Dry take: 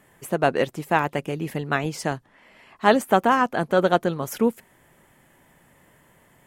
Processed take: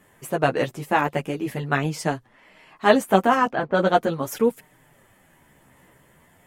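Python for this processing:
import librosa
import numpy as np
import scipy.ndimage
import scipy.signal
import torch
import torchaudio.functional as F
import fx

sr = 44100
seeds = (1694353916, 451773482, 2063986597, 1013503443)

y = fx.chorus_voices(x, sr, voices=2, hz=0.43, base_ms=11, depth_ms=4.6, mix_pct=45)
y = fx.env_lowpass(y, sr, base_hz=600.0, full_db=-17.0, at=(3.5, 4.0), fade=0.02)
y = y * 10.0 ** (3.5 / 20.0)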